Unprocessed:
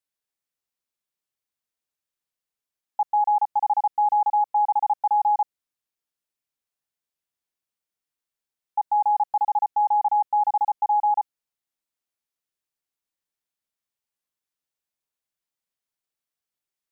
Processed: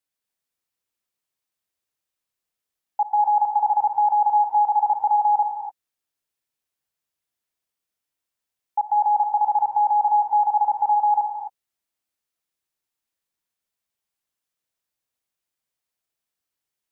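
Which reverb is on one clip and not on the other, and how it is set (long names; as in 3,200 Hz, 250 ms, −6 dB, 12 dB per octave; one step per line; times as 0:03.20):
reverb whose tail is shaped and stops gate 290 ms rising, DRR 2.5 dB
level +1.5 dB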